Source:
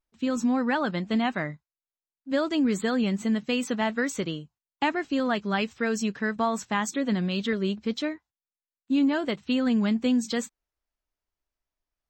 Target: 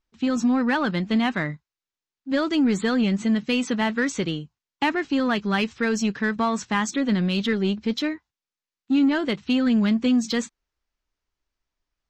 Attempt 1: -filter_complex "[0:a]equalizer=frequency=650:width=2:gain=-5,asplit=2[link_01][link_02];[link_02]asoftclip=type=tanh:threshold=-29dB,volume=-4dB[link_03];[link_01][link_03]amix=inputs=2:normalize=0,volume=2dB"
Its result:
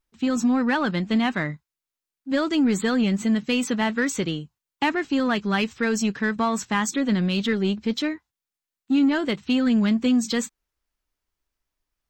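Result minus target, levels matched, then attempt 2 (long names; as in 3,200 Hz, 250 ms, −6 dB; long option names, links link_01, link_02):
8,000 Hz band +3.5 dB
-filter_complex "[0:a]lowpass=frequency=6800:width=0.5412,lowpass=frequency=6800:width=1.3066,equalizer=frequency=650:width=2:gain=-5,asplit=2[link_01][link_02];[link_02]asoftclip=type=tanh:threshold=-29dB,volume=-4dB[link_03];[link_01][link_03]amix=inputs=2:normalize=0,volume=2dB"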